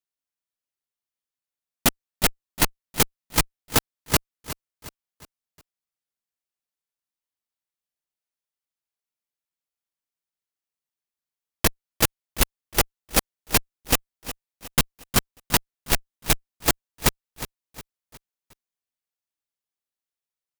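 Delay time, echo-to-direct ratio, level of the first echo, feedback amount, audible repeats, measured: 0.361 s, -13.0 dB, -14.0 dB, 43%, 3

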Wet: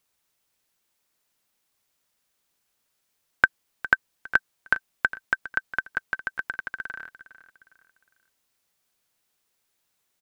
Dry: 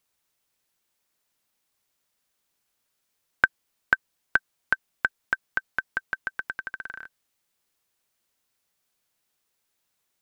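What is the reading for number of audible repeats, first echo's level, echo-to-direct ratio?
3, -15.5 dB, -15.0 dB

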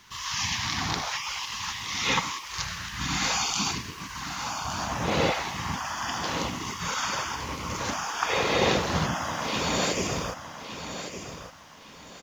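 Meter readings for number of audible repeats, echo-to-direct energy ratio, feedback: 3, -9.5 dB, 29%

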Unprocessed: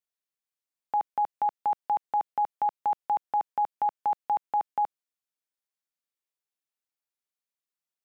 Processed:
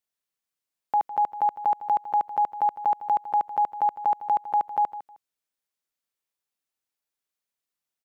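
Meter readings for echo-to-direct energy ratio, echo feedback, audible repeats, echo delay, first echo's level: -14.5 dB, 20%, 2, 0.156 s, -14.5 dB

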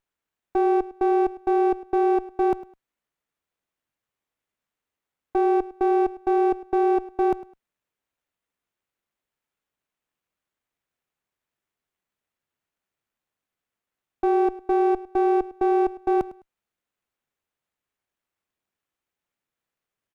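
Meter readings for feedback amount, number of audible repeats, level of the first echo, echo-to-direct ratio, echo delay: 23%, 2, -18.0 dB, -18.0 dB, 0.104 s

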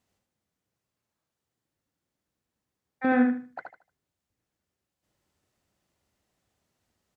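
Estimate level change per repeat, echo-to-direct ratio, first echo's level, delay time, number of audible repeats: -11.5 dB, -4.0 dB, -4.5 dB, 76 ms, 3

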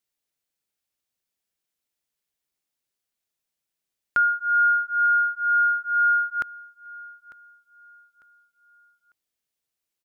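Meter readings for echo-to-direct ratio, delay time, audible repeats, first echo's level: -19.0 dB, 0.899 s, 2, -19.5 dB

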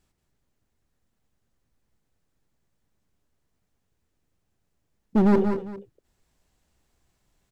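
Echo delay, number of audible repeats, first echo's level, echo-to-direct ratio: 0.179 s, 2, -8.5 dB, -6.0 dB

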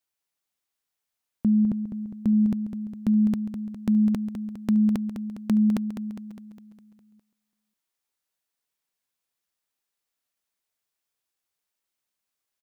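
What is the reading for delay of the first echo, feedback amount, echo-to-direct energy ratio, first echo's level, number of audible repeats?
0.204 s, 56%, -7.0 dB, -8.5 dB, 6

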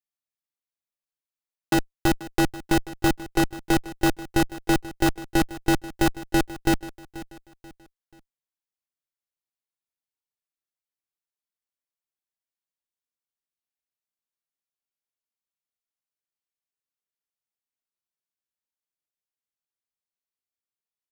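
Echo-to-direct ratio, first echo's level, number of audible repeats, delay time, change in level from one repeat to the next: -16.5 dB, -17.0 dB, 3, 0.485 s, -8.5 dB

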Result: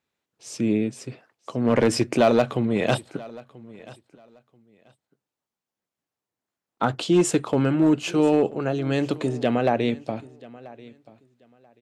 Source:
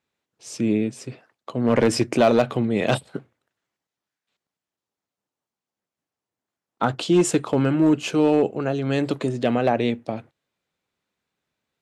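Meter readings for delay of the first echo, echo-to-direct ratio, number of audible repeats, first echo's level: 0.985 s, -21.0 dB, 2, -21.0 dB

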